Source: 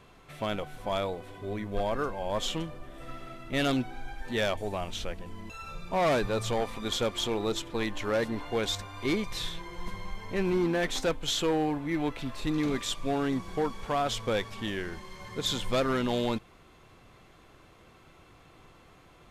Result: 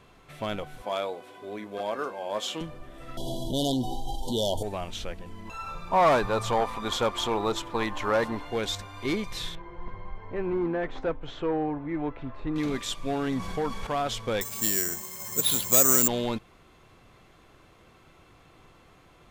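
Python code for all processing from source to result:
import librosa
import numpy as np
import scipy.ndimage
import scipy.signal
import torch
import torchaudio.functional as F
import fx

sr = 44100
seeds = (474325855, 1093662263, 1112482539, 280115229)

y = fx.chain(x, sr, fx.highpass(hz=290.0, slope=12),
    fx.notch(hz=1900.0, q=20.0),
    fx.doubler(ms=19.0, db=-12.0), at=(0.82, 2.61))
y = fx.chain(y, sr, fx.brickwall_bandstop(low_hz=1000.0, high_hz=2900.0),
    fx.high_shelf(hz=4500.0, db=7.5),
    fx.env_flatten(amount_pct=70), at=(3.17, 4.63))
y = fx.peak_eq(y, sr, hz=1000.0, db=10.5, octaves=1.1, at=(5.45, 8.36), fade=0.02)
y = fx.dmg_noise_colour(y, sr, seeds[0], colour='brown', level_db=-51.0, at=(5.45, 8.36), fade=0.02)
y = fx.chain(y, sr, fx.lowpass(hz=1500.0, slope=12),
    fx.peak_eq(hz=200.0, db=-8.5, octaves=0.35), at=(9.55, 12.56))
y = fx.chain(y, sr, fx.peak_eq(hz=350.0, db=-9.5, octaves=0.21),
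    fx.env_flatten(amount_pct=50), at=(13.27, 13.87))
y = fx.chain(y, sr, fx.bandpass_edges(low_hz=100.0, high_hz=4100.0),
    fx.resample_bad(factor=6, down='none', up='zero_stuff'), at=(14.41, 16.08))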